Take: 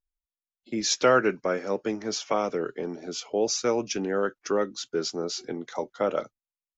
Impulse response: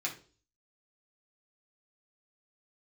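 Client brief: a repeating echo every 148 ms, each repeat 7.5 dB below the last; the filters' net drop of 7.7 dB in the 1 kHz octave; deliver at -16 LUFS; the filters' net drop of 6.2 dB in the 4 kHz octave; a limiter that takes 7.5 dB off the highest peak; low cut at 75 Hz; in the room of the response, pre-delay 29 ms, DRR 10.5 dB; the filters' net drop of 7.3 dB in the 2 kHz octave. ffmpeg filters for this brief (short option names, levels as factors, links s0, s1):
-filter_complex "[0:a]highpass=75,equalizer=f=1000:t=o:g=-9,equalizer=f=2000:t=o:g=-4.5,equalizer=f=4000:t=o:g=-7.5,alimiter=limit=0.106:level=0:latency=1,aecho=1:1:148|296|444|592|740:0.422|0.177|0.0744|0.0312|0.0131,asplit=2[s0][s1];[1:a]atrim=start_sample=2205,adelay=29[s2];[s1][s2]afir=irnorm=-1:irlink=0,volume=0.2[s3];[s0][s3]amix=inputs=2:normalize=0,volume=5.62"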